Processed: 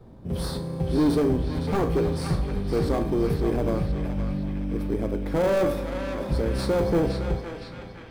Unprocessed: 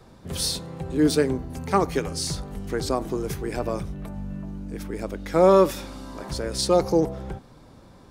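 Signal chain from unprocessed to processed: peaking EQ 6.7 kHz -13 dB 0.42 oct; feedback comb 58 Hz, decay 0.38 s, harmonics all, mix 70%; in parallel at -6 dB: sample-and-hold 16×; on the sum: overload inside the chain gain 26 dB; tilt shelf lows +6.5 dB, about 820 Hz; reverberation RT60 3.4 s, pre-delay 3 ms, DRR 14 dB; level rider gain up to 3.5 dB; band-passed feedback delay 514 ms, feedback 70%, band-pass 2.5 kHz, level -3.5 dB

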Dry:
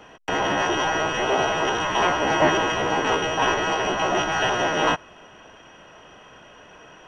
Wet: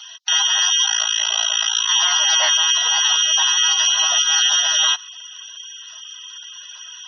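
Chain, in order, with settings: 0.86–1.89 s: AM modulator 56 Hz, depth 95%; Bessel high-pass 1.9 kHz, order 2; high-order bell 4.4 kHz +15.5 dB 1.2 oct; band-stop 2.5 kHz, Q 20; peak limiter -15 dBFS, peak gain reduction 7.5 dB; spectral gate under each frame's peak -20 dB strong; trim +8.5 dB

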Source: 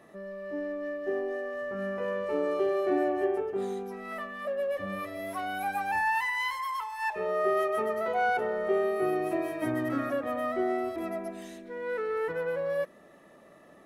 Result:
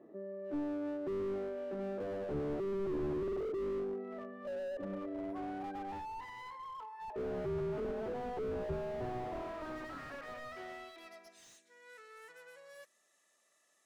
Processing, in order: band-pass sweep 340 Hz -> 7.2 kHz, 8.18–11.60 s; slew-rate limiter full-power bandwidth 4 Hz; trim +4.5 dB

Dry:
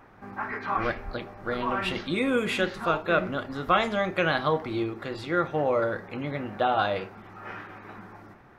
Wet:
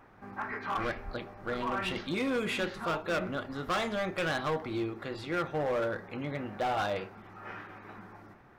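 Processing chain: overload inside the chain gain 22.5 dB; trim -4 dB

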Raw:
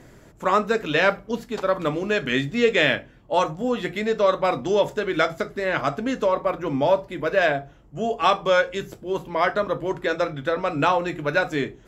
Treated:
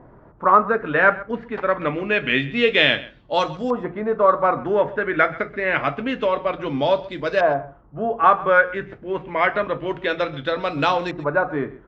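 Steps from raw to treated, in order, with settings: median filter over 5 samples; LFO low-pass saw up 0.27 Hz 970–4900 Hz; delay 130 ms -19 dB

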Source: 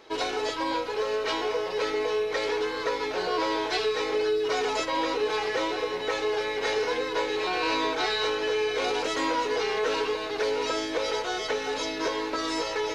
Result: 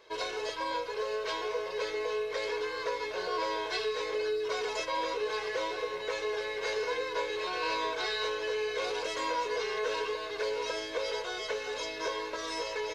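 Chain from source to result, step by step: bass shelf 390 Hz -4.5 dB; comb 1.9 ms, depth 61%; trim -6.5 dB

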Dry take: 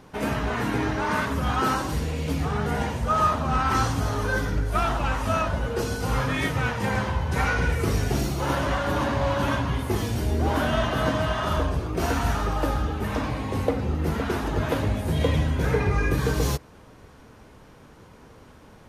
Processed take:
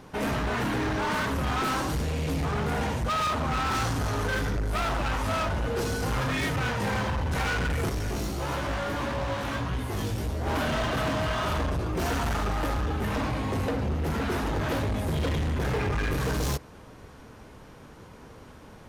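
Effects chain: overload inside the chain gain 26.5 dB; 7.89–10.47 s: chorus 1.6 Hz, delay 16 ms, depth 3.3 ms; trim +1.5 dB

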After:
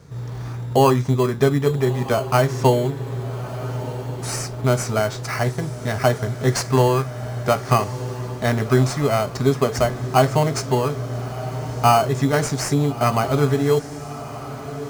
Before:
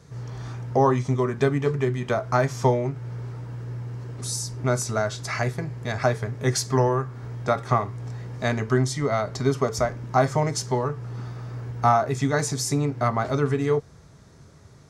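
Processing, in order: in parallel at -3 dB: sample-and-hold 12×; on the sum: echo that smears into a reverb 1289 ms, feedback 49%, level -13.5 dB

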